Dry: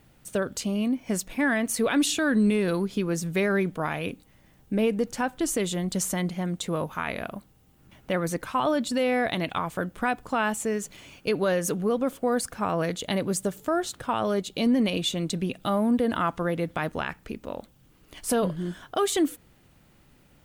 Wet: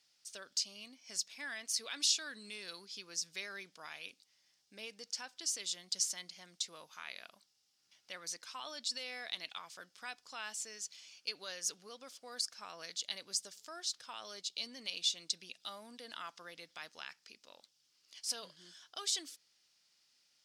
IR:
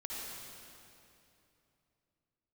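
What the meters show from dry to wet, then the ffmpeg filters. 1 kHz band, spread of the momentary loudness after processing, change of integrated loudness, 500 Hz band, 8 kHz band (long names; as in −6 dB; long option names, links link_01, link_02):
−21.0 dB, 16 LU, −12.5 dB, −27.5 dB, −5.0 dB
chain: -af "bandpass=frequency=5100:width_type=q:width=4.2:csg=0,volume=5.5dB"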